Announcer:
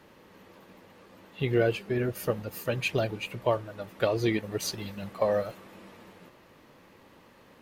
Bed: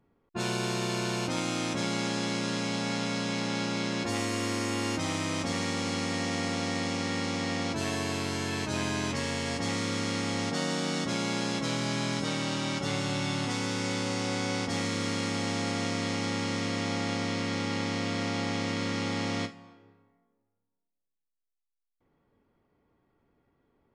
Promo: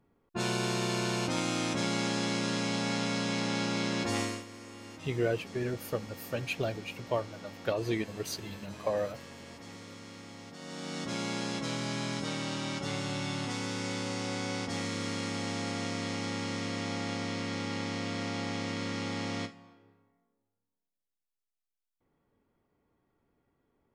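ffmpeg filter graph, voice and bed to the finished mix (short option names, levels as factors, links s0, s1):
-filter_complex "[0:a]adelay=3650,volume=0.562[s0];[1:a]volume=4.22,afade=t=out:st=4.2:d=0.24:silence=0.149624,afade=t=in:st=10.58:d=0.61:silence=0.223872[s1];[s0][s1]amix=inputs=2:normalize=0"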